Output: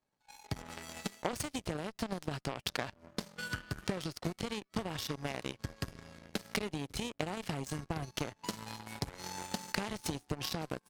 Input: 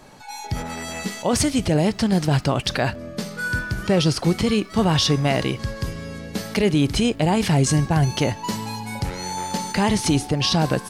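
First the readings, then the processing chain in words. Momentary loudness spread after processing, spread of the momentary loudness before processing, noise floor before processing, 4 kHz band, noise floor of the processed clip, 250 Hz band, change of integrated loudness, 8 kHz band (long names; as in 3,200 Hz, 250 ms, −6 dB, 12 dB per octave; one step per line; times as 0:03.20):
7 LU, 11 LU, −38 dBFS, −15.5 dB, −76 dBFS, −19.5 dB, −17.5 dB, −16.0 dB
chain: downward compressor 10 to 1, threshold −25 dBFS, peak gain reduction 11.5 dB
harmonic generator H 7 −17 dB, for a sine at −11 dBFS
level −3 dB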